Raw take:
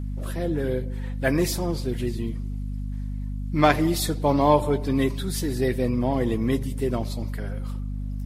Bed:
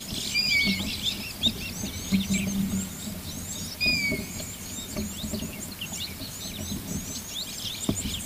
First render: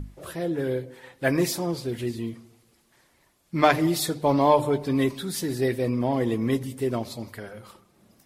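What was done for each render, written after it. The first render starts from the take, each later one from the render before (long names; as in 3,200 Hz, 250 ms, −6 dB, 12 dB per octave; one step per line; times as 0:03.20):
mains-hum notches 50/100/150/200/250/300 Hz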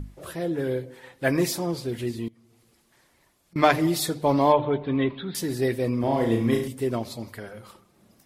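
0:02.28–0:03.56: downward compressor 4 to 1, threshold −56 dBFS
0:04.52–0:05.35: elliptic low-pass filter 3,600 Hz, stop band 50 dB
0:06.00–0:06.68: flutter between parallel walls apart 6 metres, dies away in 0.5 s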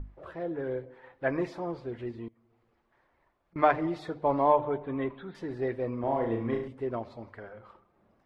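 low-pass filter 1,300 Hz 12 dB per octave
parametric band 170 Hz −11 dB 2.7 octaves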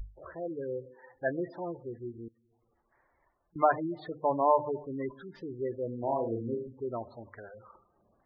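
gate on every frequency bin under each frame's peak −15 dB strong
parametric band 210 Hz −4.5 dB 2.1 octaves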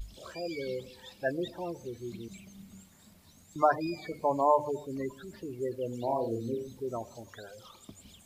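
mix in bed −23 dB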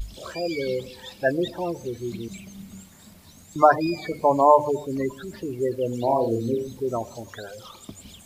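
level +9 dB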